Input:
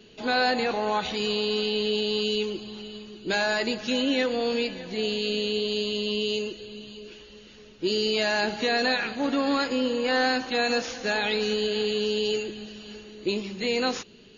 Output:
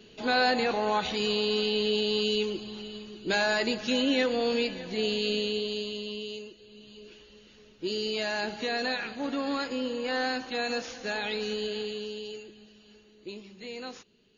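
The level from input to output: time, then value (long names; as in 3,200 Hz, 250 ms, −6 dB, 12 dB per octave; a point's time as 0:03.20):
0:05.32 −1 dB
0:06.57 −13.5 dB
0:07.00 −6 dB
0:11.70 −6 dB
0:12.33 −14 dB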